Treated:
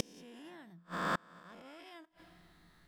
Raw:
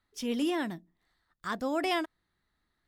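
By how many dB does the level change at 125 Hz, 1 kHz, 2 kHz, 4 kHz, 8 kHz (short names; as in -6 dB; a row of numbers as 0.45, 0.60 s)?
+1.5, -5.5, -5.0, -10.5, -5.0 dB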